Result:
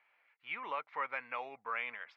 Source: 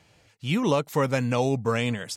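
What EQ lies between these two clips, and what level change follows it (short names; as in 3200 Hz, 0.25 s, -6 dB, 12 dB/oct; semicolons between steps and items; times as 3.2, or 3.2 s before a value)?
ladder band-pass 1500 Hz, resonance 30%; air absorption 320 m; bell 2200 Hz +10 dB 0.36 oct; +3.5 dB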